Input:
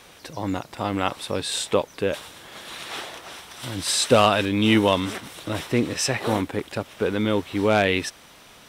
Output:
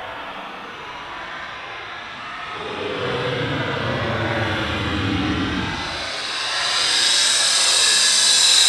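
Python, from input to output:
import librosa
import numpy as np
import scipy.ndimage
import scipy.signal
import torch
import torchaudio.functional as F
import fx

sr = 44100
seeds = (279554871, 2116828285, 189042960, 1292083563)

p1 = fx.peak_eq(x, sr, hz=1400.0, db=6.5, octaves=2.3)
p2 = fx.env_lowpass(p1, sr, base_hz=1900.0, full_db=-16.0)
p3 = p2 + fx.echo_feedback(p2, sr, ms=794, feedback_pct=39, wet_db=-6.0, dry=0)
p4 = fx.paulstretch(p3, sr, seeds[0], factor=15.0, window_s=0.05, from_s=3.43)
y = p4 * librosa.db_to_amplitude(5.5)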